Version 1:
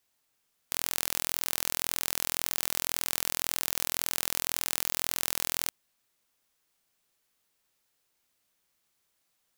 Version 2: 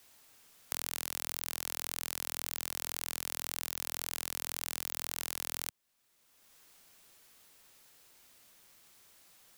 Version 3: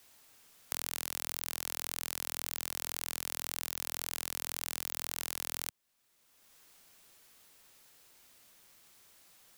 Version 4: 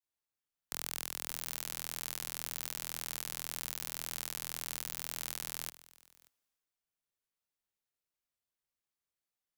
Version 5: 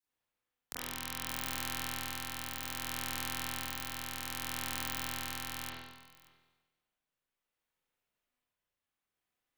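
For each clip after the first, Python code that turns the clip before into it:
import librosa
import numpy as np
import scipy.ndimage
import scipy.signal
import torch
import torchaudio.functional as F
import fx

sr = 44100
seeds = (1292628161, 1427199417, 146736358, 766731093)

y1 = fx.band_squash(x, sr, depth_pct=70)
y1 = y1 * librosa.db_to_amplitude(-7.0)
y2 = y1
y3 = y2 + 10.0 ** (-12.5 / 20.0) * np.pad(y2, (int(582 * sr / 1000.0), 0))[:len(y2)]
y3 = fx.band_widen(y3, sr, depth_pct=100)
y3 = y3 * librosa.db_to_amplitude(-2.5)
y4 = y3 * (1.0 - 0.35 / 2.0 + 0.35 / 2.0 * np.cos(2.0 * np.pi * 0.63 * (np.arange(len(y3)) / sr)))
y4 = fx.rev_spring(y4, sr, rt60_s=1.1, pass_ms=(36, 40), chirp_ms=60, drr_db=-8.0)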